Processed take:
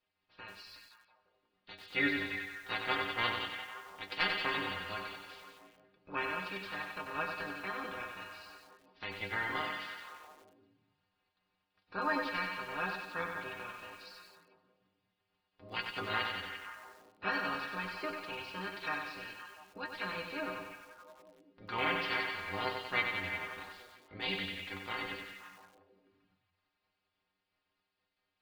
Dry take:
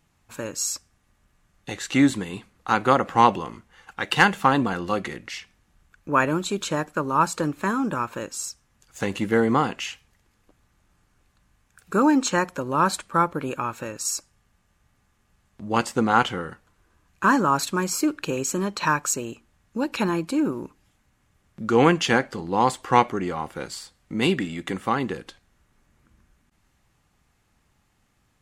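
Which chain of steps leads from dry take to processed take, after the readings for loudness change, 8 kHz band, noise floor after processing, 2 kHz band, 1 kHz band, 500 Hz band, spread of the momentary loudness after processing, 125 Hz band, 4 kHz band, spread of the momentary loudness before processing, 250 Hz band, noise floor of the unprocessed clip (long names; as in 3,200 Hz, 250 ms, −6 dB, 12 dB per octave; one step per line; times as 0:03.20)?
−13.5 dB, −30.0 dB, −84 dBFS, −7.5 dB, −16.0 dB, −17.0 dB, 18 LU, −20.0 dB, −7.0 dB, 15 LU, −21.0 dB, −67 dBFS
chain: ceiling on every frequency bin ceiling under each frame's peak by 22 dB
Butterworth low-pass 4,900 Hz 72 dB per octave
dynamic equaliser 2,000 Hz, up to +5 dB, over −32 dBFS, Q 1.2
stiff-string resonator 92 Hz, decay 0.27 s, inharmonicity 0.008
echo through a band-pass that steps 173 ms, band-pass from 3,400 Hz, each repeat −0.7 octaves, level −6 dB
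feedback echo at a low word length 94 ms, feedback 55%, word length 8 bits, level −5 dB
level −9 dB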